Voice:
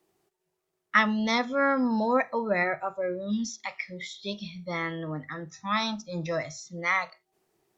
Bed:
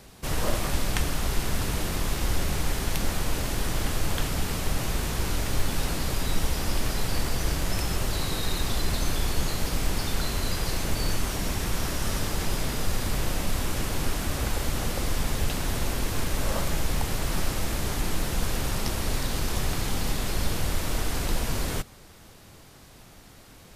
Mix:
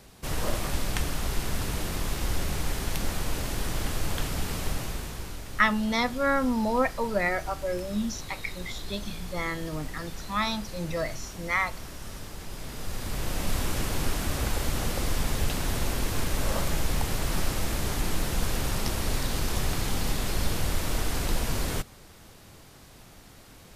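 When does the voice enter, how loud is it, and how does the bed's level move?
4.65 s, -0.5 dB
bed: 4.67 s -2.5 dB
5.42 s -12 dB
12.47 s -12 dB
13.52 s -0.5 dB

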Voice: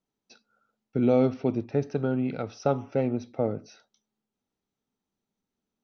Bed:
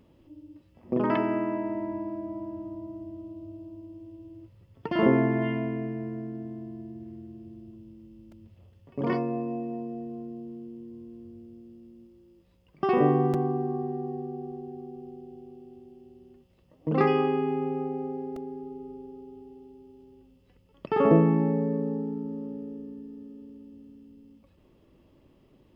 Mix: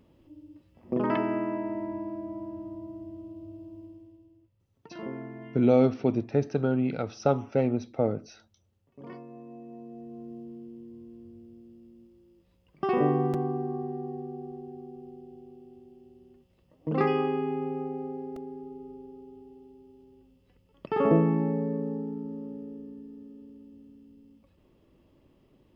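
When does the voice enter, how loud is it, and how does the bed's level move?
4.60 s, +1.0 dB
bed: 3.85 s -1.5 dB
4.48 s -16.5 dB
9.28 s -16.5 dB
10.33 s -2.5 dB

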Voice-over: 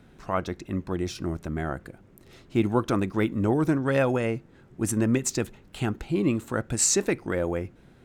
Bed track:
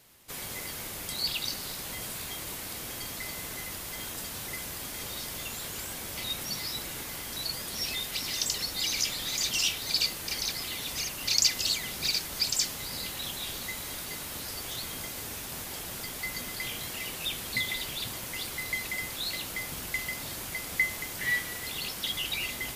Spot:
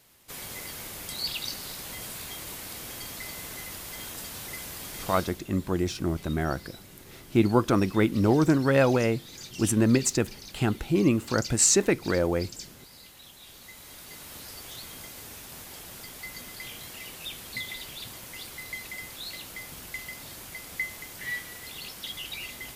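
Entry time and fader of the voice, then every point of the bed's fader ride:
4.80 s, +2.0 dB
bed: 5.16 s -1 dB
5.44 s -14 dB
13.34 s -14 dB
14.31 s -5 dB

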